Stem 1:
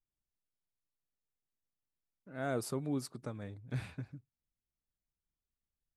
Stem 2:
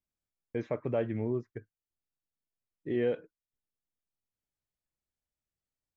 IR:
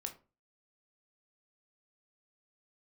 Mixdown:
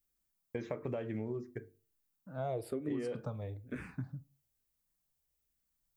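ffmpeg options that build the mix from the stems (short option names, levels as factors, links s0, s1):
-filter_complex "[0:a]highshelf=f=2800:g=-12,asplit=2[s0][s1];[s1]afreqshift=-1.1[s2];[s0][s2]amix=inputs=2:normalize=1,volume=1.33,asplit=2[s3][s4];[s4]volume=0.631[s5];[1:a]aemphasis=mode=production:type=50kf,bandreject=f=50:t=h:w=6,bandreject=f=100:t=h:w=6,bandreject=f=150:t=h:w=6,bandreject=f=200:t=h:w=6,bandreject=f=250:t=h:w=6,bandreject=f=300:t=h:w=6,bandreject=f=350:t=h:w=6,bandreject=f=400:t=h:w=6,bandreject=f=450:t=h:w=6,acompressor=threshold=0.0251:ratio=6,volume=0.75,asplit=2[s6][s7];[s7]volume=0.562[s8];[2:a]atrim=start_sample=2205[s9];[s5][s8]amix=inputs=2:normalize=0[s10];[s10][s9]afir=irnorm=-1:irlink=0[s11];[s3][s6][s11]amix=inputs=3:normalize=0,acompressor=threshold=0.0224:ratio=6"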